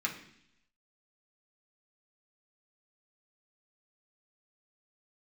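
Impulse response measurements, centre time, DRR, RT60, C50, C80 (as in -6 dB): 18 ms, -2.0 dB, 0.70 s, 9.0 dB, 12.5 dB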